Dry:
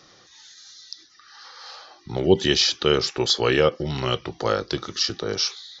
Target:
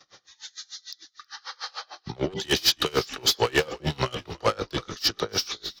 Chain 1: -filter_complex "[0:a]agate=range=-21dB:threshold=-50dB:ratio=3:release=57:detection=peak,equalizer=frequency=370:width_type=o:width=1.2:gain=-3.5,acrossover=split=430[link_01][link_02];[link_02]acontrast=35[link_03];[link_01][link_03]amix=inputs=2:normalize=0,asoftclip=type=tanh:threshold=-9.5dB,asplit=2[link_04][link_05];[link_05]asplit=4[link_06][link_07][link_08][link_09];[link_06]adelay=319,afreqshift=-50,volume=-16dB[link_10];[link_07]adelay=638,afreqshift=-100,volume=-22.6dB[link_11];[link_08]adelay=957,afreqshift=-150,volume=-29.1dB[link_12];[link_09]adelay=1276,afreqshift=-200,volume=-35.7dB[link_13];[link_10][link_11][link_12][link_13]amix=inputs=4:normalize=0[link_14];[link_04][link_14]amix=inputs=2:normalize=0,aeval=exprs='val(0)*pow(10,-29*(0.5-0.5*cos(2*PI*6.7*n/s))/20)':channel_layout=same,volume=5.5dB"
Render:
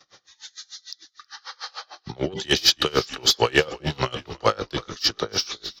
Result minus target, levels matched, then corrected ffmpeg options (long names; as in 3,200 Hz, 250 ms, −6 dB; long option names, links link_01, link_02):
soft clipping: distortion −9 dB
-filter_complex "[0:a]agate=range=-21dB:threshold=-50dB:ratio=3:release=57:detection=peak,equalizer=frequency=370:width_type=o:width=1.2:gain=-3.5,acrossover=split=430[link_01][link_02];[link_02]acontrast=35[link_03];[link_01][link_03]amix=inputs=2:normalize=0,asoftclip=type=tanh:threshold=-18dB,asplit=2[link_04][link_05];[link_05]asplit=4[link_06][link_07][link_08][link_09];[link_06]adelay=319,afreqshift=-50,volume=-16dB[link_10];[link_07]adelay=638,afreqshift=-100,volume=-22.6dB[link_11];[link_08]adelay=957,afreqshift=-150,volume=-29.1dB[link_12];[link_09]adelay=1276,afreqshift=-200,volume=-35.7dB[link_13];[link_10][link_11][link_12][link_13]amix=inputs=4:normalize=0[link_14];[link_04][link_14]amix=inputs=2:normalize=0,aeval=exprs='val(0)*pow(10,-29*(0.5-0.5*cos(2*PI*6.7*n/s))/20)':channel_layout=same,volume=5.5dB"